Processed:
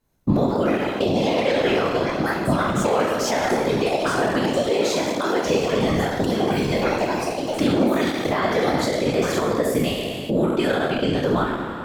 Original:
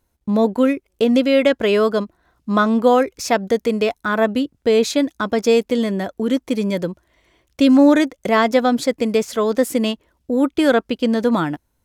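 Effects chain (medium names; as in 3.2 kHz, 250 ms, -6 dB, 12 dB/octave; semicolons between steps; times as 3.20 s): spectral sustain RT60 1.14 s; recorder AGC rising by 30 dB/s; peaking EQ 10 kHz -4.5 dB 0.57 oct; ever faster or slower copies 219 ms, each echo +4 st, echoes 3, each echo -6 dB; 4.70–5.45 s: steep high-pass 290 Hz 36 dB/octave; peak limiter -6.5 dBFS, peak gain reduction 7.5 dB; whisper effect; trim -5.5 dB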